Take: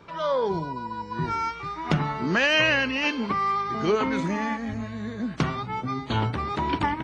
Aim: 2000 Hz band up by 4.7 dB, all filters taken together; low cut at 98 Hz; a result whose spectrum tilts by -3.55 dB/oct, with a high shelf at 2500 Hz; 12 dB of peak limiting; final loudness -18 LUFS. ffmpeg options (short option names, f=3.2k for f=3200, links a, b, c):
-af "highpass=98,equalizer=f=2k:t=o:g=8.5,highshelf=f=2.5k:g=-5.5,volume=8.5dB,alimiter=limit=-8dB:level=0:latency=1"